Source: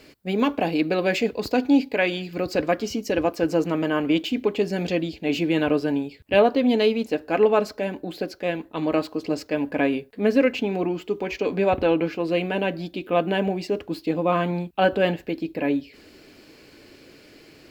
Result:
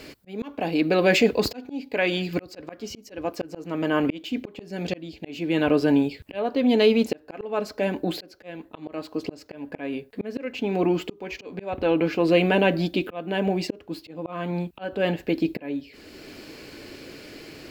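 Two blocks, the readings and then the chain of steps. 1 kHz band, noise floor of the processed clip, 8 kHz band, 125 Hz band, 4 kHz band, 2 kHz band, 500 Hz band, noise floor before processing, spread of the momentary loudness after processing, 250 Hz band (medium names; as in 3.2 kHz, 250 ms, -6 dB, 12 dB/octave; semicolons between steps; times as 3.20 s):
-4.5 dB, -52 dBFS, no reading, 0.0 dB, 0.0 dB, -1.0 dB, -2.5 dB, -51 dBFS, 21 LU, -1.5 dB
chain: slow attack 750 ms; in parallel at -2 dB: peak limiter -21 dBFS, peak gain reduction 10 dB; on the sum: trim +2 dB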